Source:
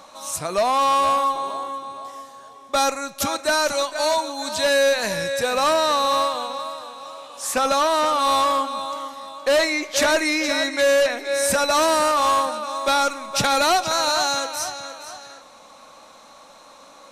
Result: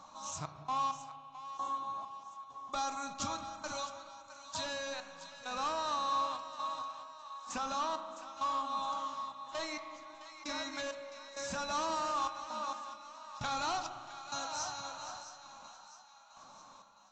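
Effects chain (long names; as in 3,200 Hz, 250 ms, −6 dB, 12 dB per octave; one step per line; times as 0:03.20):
downward compressor 5 to 1, threshold −25 dBFS, peak gain reduction 8.5 dB
dynamic equaliser 3,000 Hz, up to +4 dB, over −40 dBFS, Q 0.9
gate pattern "xx.x...xx..xx" 66 BPM −24 dB
graphic EQ with 10 bands 125 Hz +4 dB, 500 Hz −12 dB, 1,000 Hz +6 dB, 2,000 Hz −10 dB, 4,000 Hz −4 dB
echo with a time of its own for lows and highs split 670 Hz, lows 184 ms, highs 661 ms, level −12.5 dB
spring reverb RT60 2.1 s, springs 34 ms, chirp 50 ms, DRR 9 dB
level −7.5 dB
AAC 32 kbit/s 16,000 Hz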